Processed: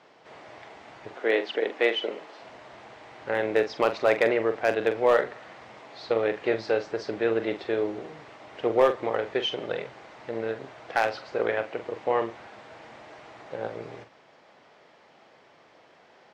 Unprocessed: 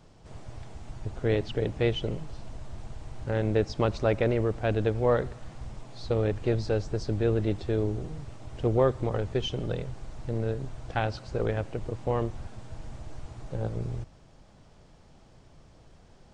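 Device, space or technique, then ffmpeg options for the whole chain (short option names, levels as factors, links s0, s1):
megaphone: -filter_complex "[0:a]asettb=1/sr,asplit=3[s0][s1][s2];[s0]atrim=end=1.134[s3];[s1]atrim=start=1.13:end=2.41,asetpts=PTS-STARTPTS,afade=t=in:d=0.004:c=qsin,afade=t=out:st=1.276:d=0.004:c=qsin,highpass=f=240:w=0.5412,highpass=f=240:w=1.3066[s4];[s2]atrim=start=2.406[s5];[s3][s4]acrossfade=d=0.004:c1=hsin:c2=qsin[s6];[s6][s5]acrossfade=d=0.004:c1=qsin:c2=hsin,highpass=460,lowpass=3700,equalizer=f=2000:t=o:w=0.56:g=5.5,asoftclip=type=hard:threshold=0.126,asplit=2[s7][s8];[s8]adelay=44,volume=0.335[s9];[s7][s9]amix=inputs=2:normalize=0,volume=2"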